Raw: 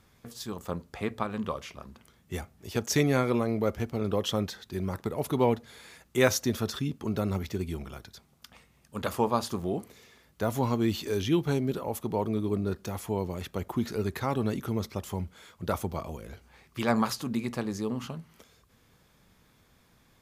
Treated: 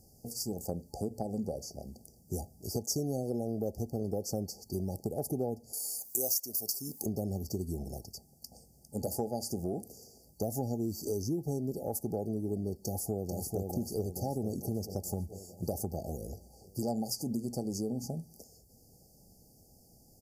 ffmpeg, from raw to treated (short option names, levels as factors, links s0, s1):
-filter_complex "[0:a]asettb=1/sr,asplit=3[s0][s1][s2];[s0]atrim=end=5.734[s3];[s1]atrim=start=5.73:end=7.06,asetpts=PTS-STARTPTS,afade=t=in:d=0.004:c=qsin,afade=t=out:st=1.326:d=0.004:c=qsin,aemphasis=mode=production:type=riaa[s4];[s2]atrim=start=7.056[s5];[s3][s4]acrossfade=d=0.004:c1=hsin:c2=qsin[s6];[s6][s5]acrossfade=d=0.004:c1=qsin:c2=hsin,asplit=2[s7][s8];[s8]afade=t=in:st=12.84:d=0.01,afade=t=out:st=13.64:d=0.01,aecho=0:1:440|880|1320|1760|2200|2640|3080|3520|3960:0.630957|0.378574|0.227145|0.136287|0.0817721|0.0490632|0.0294379|0.0176628|0.0105977[s9];[s7][s9]amix=inputs=2:normalize=0,afftfilt=real='re*(1-between(b*sr/4096,850,4500))':imag='im*(1-between(b*sr/4096,850,4500))':win_size=4096:overlap=0.75,highshelf=f=6100:g=8,acompressor=threshold=0.0224:ratio=5,volume=1.26"